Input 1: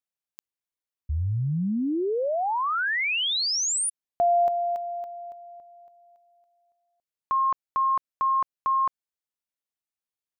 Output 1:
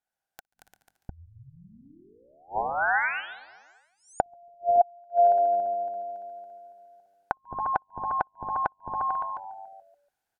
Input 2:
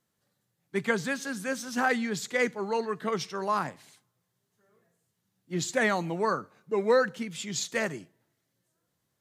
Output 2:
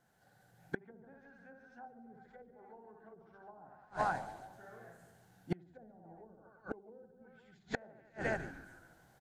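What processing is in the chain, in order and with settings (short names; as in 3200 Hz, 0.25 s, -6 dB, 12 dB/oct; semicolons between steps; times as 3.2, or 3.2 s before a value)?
notches 50/100/150/200/250 Hz; reverse bouncing-ball echo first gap 60 ms, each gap 1.25×, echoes 5; dynamic EQ 2000 Hz, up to -6 dB, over -37 dBFS, Q 0.95; treble ducked by the level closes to 320 Hz, closed at -22 dBFS; low shelf 290 Hz +9 dB; frequency-shifting echo 0.143 s, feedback 56%, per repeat -99 Hz, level -18 dB; flipped gate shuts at -27 dBFS, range -38 dB; small resonant body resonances 770/1500 Hz, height 17 dB, ringing for 20 ms; AGC gain up to 6.5 dB; gain -2 dB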